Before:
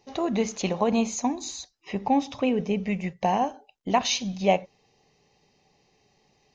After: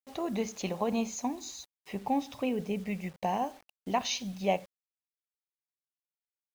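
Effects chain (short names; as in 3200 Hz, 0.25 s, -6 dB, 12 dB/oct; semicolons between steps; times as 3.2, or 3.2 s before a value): requantised 8-bit, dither none; gain -7 dB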